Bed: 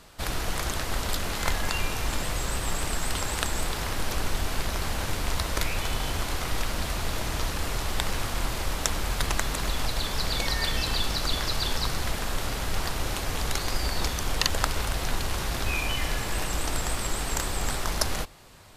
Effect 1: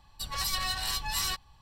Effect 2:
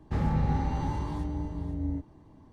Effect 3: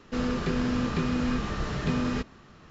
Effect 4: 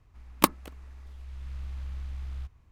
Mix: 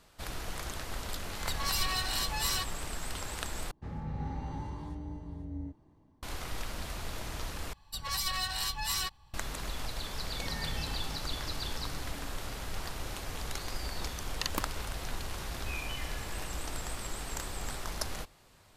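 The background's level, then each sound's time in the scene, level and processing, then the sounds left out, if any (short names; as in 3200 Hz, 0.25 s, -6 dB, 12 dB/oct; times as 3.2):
bed -9.5 dB
1.28 add 1 -1.5 dB + backwards sustainer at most 75 dB/s
3.71 replace with 2 -13 dB + AGC gain up to 5 dB
7.73 replace with 1 -2 dB
10.29 add 2 -16 dB
14.14 add 4 -14.5 dB
not used: 3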